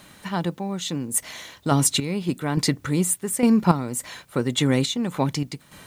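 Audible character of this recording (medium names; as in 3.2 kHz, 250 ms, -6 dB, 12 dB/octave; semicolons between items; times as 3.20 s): random-step tremolo 3.5 Hz, depth 80%; a quantiser's noise floor 12-bit, dither triangular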